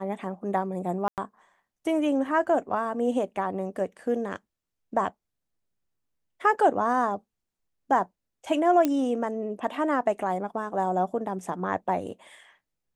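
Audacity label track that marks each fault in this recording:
1.080000	1.180000	dropout 98 ms
8.850000	8.850000	pop -11 dBFS

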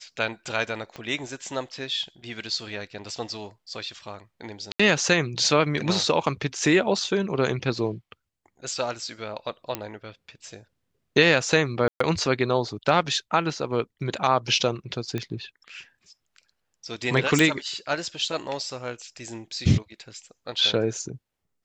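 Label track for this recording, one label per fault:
0.960000	0.960000	pop -23 dBFS
4.720000	4.790000	dropout 75 ms
9.750000	9.750000	pop -11 dBFS
11.880000	12.000000	dropout 124 ms
15.180000	15.180000	pop -16 dBFS
17.390000	17.390000	pop

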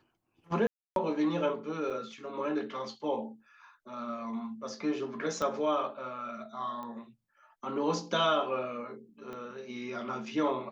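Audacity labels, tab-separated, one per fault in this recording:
0.670000	0.960000	dropout 292 ms
1.900000	1.910000	dropout 5.5 ms
5.420000	5.420000	pop -20 dBFS
6.830000	6.830000	pop -30 dBFS
9.330000	9.330000	pop -30 dBFS

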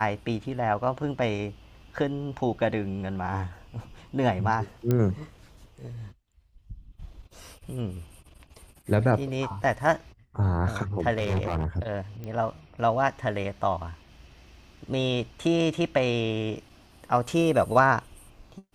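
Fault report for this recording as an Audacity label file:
4.910000	4.910000	pop -13 dBFS
11.130000	11.660000	clipped -22.5 dBFS
12.240000	12.240000	pop -25 dBFS

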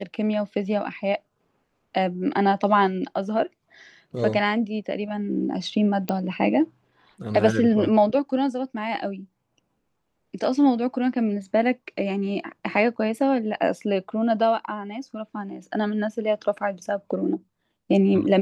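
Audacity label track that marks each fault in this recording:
6.090000	6.090000	pop -12 dBFS

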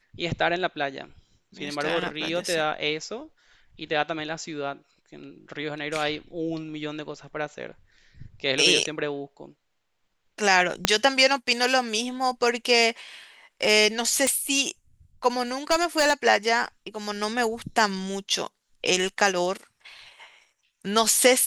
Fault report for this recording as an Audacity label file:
10.850000	10.850000	pop -2 dBFS
14.270000	14.270000	pop -10 dBFS
15.710000	16.140000	clipped -16 dBFS

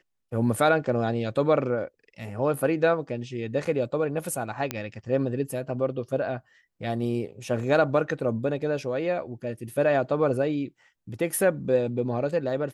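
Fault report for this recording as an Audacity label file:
3.650000	3.660000	dropout 5.3 ms
4.710000	4.710000	pop -12 dBFS

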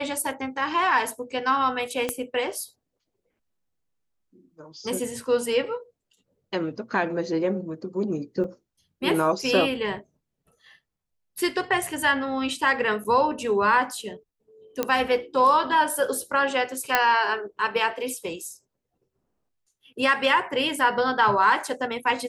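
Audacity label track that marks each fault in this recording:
2.090000	2.090000	pop -11 dBFS
8.440000	8.440000	dropout 3.4 ms
13.040000	13.050000	dropout 7 ms
14.830000	14.830000	pop -9 dBFS
16.950000	16.950000	pop -4 dBFS

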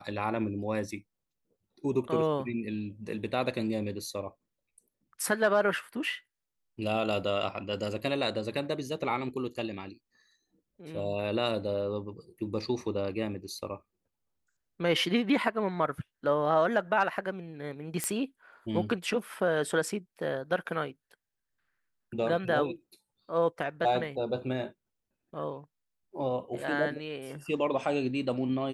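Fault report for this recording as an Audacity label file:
18.040000	18.040000	pop -13 dBFS

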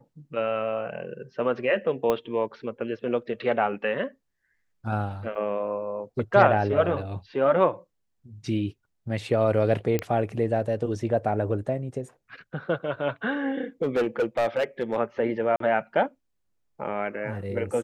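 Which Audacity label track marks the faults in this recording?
2.100000	2.100000	pop -12 dBFS
5.350000	5.350000	dropout 4.4 ms
9.990000	9.990000	pop -12 dBFS
13.820000	14.960000	clipped -19.5 dBFS
15.560000	15.600000	dropout 43 ms

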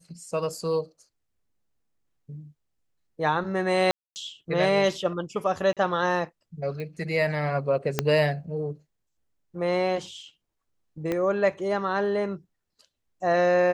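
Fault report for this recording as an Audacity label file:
0.610000	0.610000	dropout 2.1 ms
3.910000	4.160000	dropout 249 ms
5.730000	5.770000	dropout 37 ms
6.800000	6.800000	pop -25 dBFS
7.990000	7.990000	pop -7 dBFS
11.120000	11.120000	pop -15 dBFS

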